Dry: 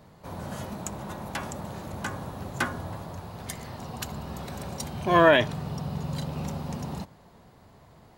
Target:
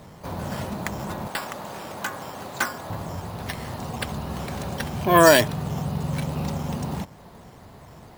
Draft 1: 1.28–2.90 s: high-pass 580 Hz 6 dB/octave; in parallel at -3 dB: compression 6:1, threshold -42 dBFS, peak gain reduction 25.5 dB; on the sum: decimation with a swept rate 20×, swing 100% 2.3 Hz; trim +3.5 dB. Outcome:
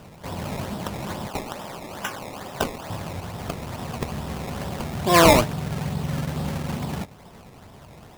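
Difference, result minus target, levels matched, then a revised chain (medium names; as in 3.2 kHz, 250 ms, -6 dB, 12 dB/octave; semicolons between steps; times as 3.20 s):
decimation with a swept rate: distortion +12 dB
1.28–2.90 s: high-pass 580 Hz 6 dB/octave; in parallel at -3 dB: compression 6:1, threshold -42 dBFS, peak gain reduction 25.5 dB; on the sum: decimation with a swept rate 5×, swing 100% 2.3 Hz; trim +3.5 dB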